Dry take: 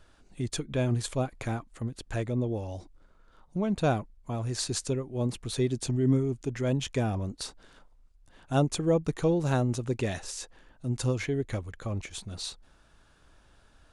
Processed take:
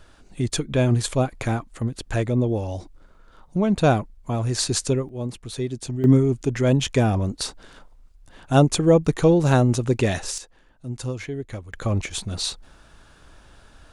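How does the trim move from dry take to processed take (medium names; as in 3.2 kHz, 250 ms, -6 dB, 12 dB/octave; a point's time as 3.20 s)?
+8 dB
from 5.09 s 0 dB
from 6.04 s +9 dB
from 10.38 s -1 dB
from 11.73 s +10 dB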